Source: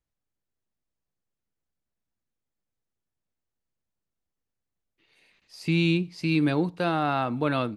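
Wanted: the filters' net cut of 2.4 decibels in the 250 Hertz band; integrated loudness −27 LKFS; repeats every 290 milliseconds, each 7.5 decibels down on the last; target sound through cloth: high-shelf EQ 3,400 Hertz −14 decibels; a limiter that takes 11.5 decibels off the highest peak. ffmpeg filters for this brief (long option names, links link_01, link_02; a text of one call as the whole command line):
ffmpeg -i in.wav -af "equalizer=frequency=250:width_type=o:gain=-3.5,alimiter=level_in=1dB:limit=-24dB:level=0:latency=1,volume=-1dB,highshelf=frequency=3400:gain=-14,aecho=1:1:290|580|870|1160|1450:0.422|0.177|0.0744|0.0312|0.0131,volume=8.5dB" out.wav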